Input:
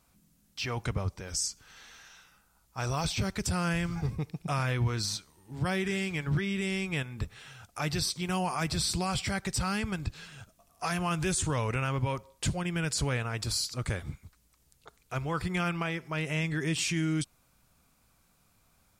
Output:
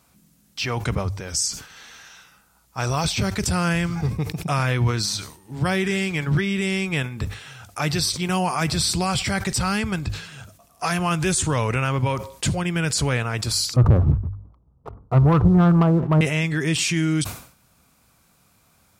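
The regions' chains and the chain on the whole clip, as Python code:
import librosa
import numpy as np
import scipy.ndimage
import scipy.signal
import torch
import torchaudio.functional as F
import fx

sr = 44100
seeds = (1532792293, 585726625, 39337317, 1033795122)

y = fx.chain(x, sr, fx.steep_lowpass(hz=1200.0, slope=48),
    fx.leveller(passes=2),
    fx.low_shelf(hz=190.0, db=10.5), at=(13.76, 16.21))
y = scipy.signal.sosfilt(scipy.signal.butter(2, 54.0, 'highpass', fs=sr, output='sos'), y)
y = fx.hum_notches(y, sr, base_hz=50, count=2)
y = fx.sustainer(y, sr, db_per_s=110.0)
y = y * librosa.db_to_amplitude(8.0)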